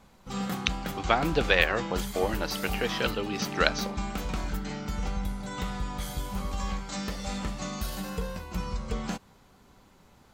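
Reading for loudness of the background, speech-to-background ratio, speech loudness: −34.5 LKFS, 6.0 dB, −28.5 LKFS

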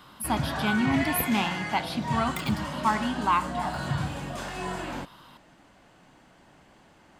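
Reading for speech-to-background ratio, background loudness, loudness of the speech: 4.0 dB, −32.0 LKFS, −28.0 LKFS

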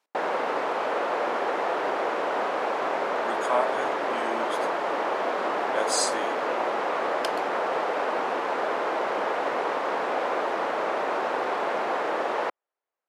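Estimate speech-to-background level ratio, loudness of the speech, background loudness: −4.5 dB, −31.5 LKFS, −27.0 LKFS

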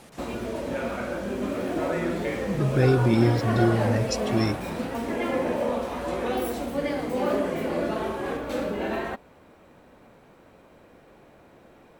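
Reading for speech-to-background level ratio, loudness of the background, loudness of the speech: 4.5 dB, −28.5 LKFS, −24.0 LKFS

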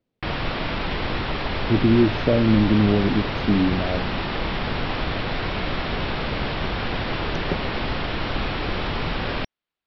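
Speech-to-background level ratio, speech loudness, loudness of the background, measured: 5.5 dB, −21.0 LKFS, −26.5 LKFS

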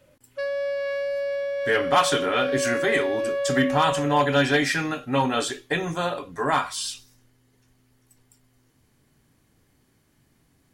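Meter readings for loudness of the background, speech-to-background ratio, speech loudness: −27.5 LKFS, 3.5 dB, −24.0 LKFS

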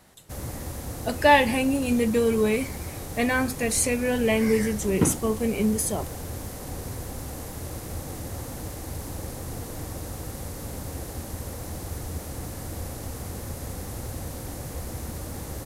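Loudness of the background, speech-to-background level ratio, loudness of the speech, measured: −35.5 LKFS, 12.0 dB, −23.5 LKFS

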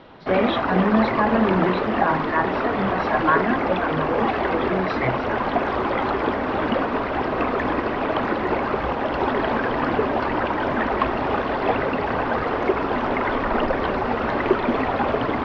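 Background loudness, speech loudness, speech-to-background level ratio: −23.0 LKFS, −24.5 LKFS, −1.5 dB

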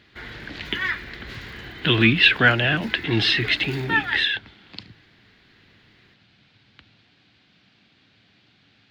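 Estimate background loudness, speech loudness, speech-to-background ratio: −30.5 LKFS, −20.0 LKFS, 10.5 dB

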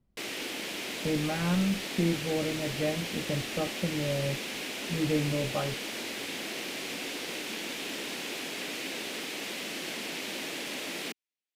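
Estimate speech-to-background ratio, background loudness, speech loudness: 3.0 dB, −35.0 LKFS, −32.0 LKFS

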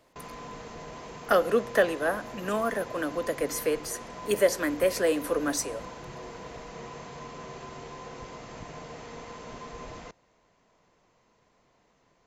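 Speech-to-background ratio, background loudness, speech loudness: 14.5 dB, −42.5 LKFS, −28.0 LKFS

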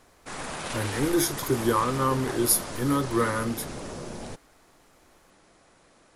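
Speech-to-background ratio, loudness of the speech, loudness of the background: 9.5 dB, −26.0 LKFS, −35.5 LKFS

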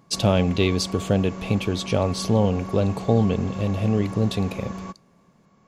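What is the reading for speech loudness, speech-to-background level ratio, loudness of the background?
−23.0 LKFS, 12.0 dB, −35.0 LKFS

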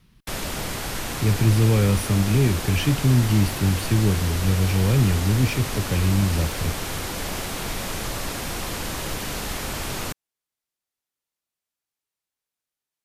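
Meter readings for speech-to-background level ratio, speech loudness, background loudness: 7.5 dB, −21.5 LKFS, −29.0 LKFS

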